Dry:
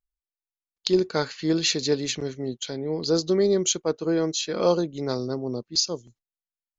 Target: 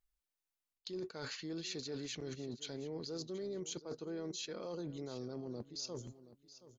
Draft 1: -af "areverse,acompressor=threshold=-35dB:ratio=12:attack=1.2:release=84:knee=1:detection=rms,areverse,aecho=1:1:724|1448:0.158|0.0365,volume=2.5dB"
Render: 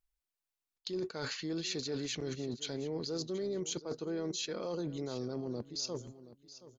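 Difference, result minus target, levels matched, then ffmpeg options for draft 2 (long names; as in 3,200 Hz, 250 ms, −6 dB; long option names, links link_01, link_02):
downward compressor: peak gain reduction −5.5 dB
-af "areverse,acompressor=threshold=-41dB:ratio=12:attack=1.2:release=84:knee=1:detection=rms,areverse,aecho=1:1:724|1448:0.158|0.0365,volume=2.5dB"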